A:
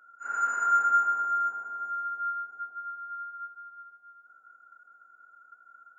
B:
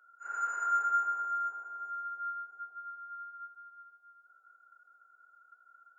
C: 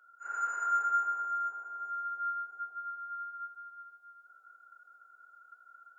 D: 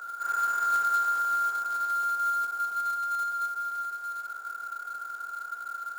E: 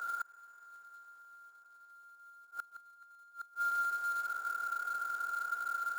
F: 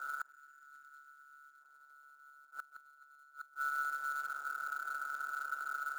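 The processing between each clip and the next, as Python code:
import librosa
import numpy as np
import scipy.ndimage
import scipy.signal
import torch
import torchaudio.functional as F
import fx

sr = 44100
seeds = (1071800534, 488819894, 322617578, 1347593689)

y1 = scipy.signal.sosfilt(scipy.signal.butter(4, 330.0, 'highpass', fs=sr, output='sos'), x)
y1 = y1 * librosa.db_to_amplitude(-6.0)
y2 = fx.rider(y1, sr, range_db=4, speed_s=2.0)
y3 = fx.bin_compress(y2, sr, power=0.4)
y3 = fx.quant_float(y3, sr, bits=2)
y3 = y3 * librosa.db_to_amplitude(2.0)
y4 = fx.gate_flip(y3, sr, shuts_db=-27.0, range_db=-29)
y5 = y4 * np.sin(2.0 * np.pi * 71.0 * np.arange(len(y4)) / sr)
y5 = fx.spec_box(y5, sr, start_s=0.31, length_s=1.3, low_hz=420.0, high_hz=1300.0, gain_db=-18)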